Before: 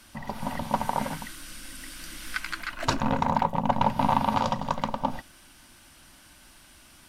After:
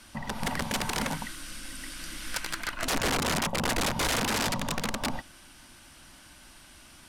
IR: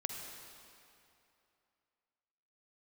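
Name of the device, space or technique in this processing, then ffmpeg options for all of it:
overflowing digital effects unit: -af "aeval=exprs='(mod(14.1*val(0)+1,2)-1)/14.1':c=same,lowpass=12k,volume=1.5dB"

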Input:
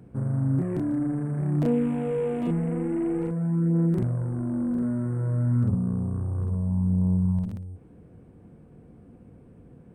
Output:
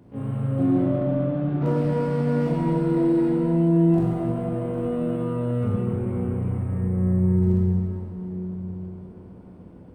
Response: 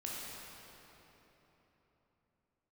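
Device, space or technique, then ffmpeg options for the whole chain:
shimmer-style reverb: -filter_complex "[0:a]asettb=1/sr,asplit=3[a][b][c];[a]atrim=end=0.634[d];[b]atrim=start=0.63:end=1.66,asetpts=PTS-STARTPTS,afade=t=in:d=0.004:c=qsin,afade=t=out:st=1.026:d=0.004:c=qsin,lowpass=1.7k[e];[c]atrim=start=1.656[f];[d][e]acrossfade=d=0.004:c1=hsin:c2=qsin[g];[g][f]acrossfade=d=0.004:c1=qsin:c2=hsin,asplit=2[h][i];[i]asetrate=88200,aresample=44100,atempo=0.5,volume=-5dB[j];[h][j]amix=inputs=2:normalize=0[k];[1:a]atrim=start_sample=2205[l];[k][l]afir=irnorm=-1:irlink=0"

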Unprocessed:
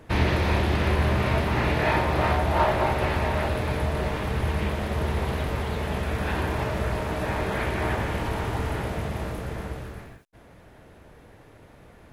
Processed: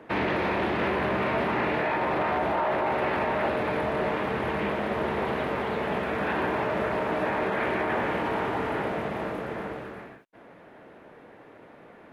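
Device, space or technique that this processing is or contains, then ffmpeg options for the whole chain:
DJ mixer with the lows and highs turned down: -filter_complex "[0:a]acrossover=split=180 3000:gain=0.0708 1 0.158[a][b][c];[a][b][c]amix=inputs=3:normalize=0,alimiter=limit=-22dB:level=0:latency=1:release=14,volume=3.5dB"

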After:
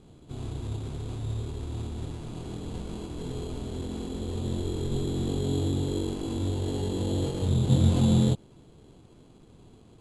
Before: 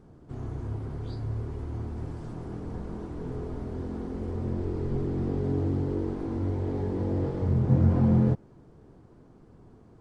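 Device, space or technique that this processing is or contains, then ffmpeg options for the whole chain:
crushed at another speed: -af "asetrate=88200,aresample=44100,acrusher=samples=6:mix=1:aa=0.000001,asetrate=22050,aresample=44100"

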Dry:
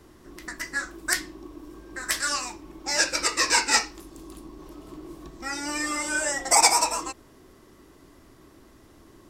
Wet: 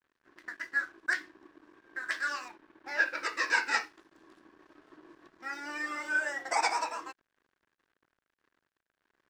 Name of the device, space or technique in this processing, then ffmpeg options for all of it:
pocket radio on a weak battery: -filter_complex "[0:a]asettb=1/sr,asplit=3[a][b][c];[a]atrim=end=2.484[d];[b]atrim=start=2.48:end=3.23,asetpts=PTS-STARTPTS,afade=t=in:d=0.004:c=qsin,afade=t=out:st=0.746:d=0.004:c=qsin,lowpass=3.7k[e];[c]atrim=start=3.226[f];[d][e]acrossfade=d=0.004:c1=hsin:c2=qsin[g];[g][f]acrossfade=d=0.004:c1=qsin:c2=hsin,highpass=300,lowpass=3.8k,aeval=exprs='sgn(val(0))*max(abs(val(0))-0.00282,0)':c=same,equalizer=f=1.6k:t=o:w=0.44:g=10,volume=-8.5dB"

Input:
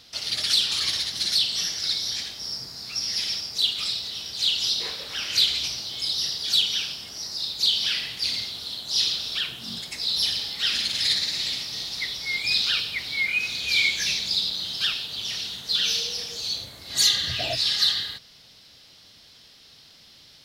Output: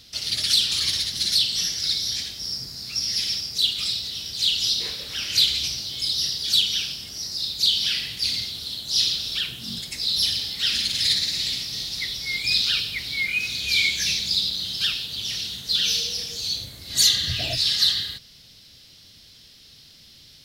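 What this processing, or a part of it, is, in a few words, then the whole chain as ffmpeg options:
smiley-face EQ: -af "lowshelf=f=140:g=6.5,equalizer=f=910:t=o:w=1.9:g=-8,highshelf=f=9.5k:g=4.5,volume=2dB"

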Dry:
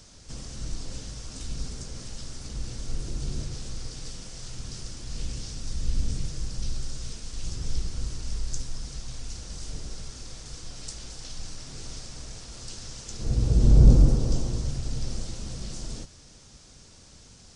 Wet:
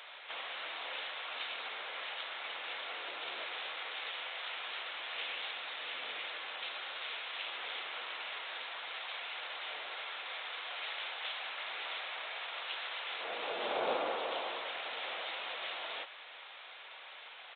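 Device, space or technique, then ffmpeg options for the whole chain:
musical greeting card: -af "aresample=8000,aresample=44100,highpass=f=690:w=0.5412,highpass=f=690:w=1.3066,equalizer=f=2.2k:t=o:w=0.55:g=5,volume=10.5dB"

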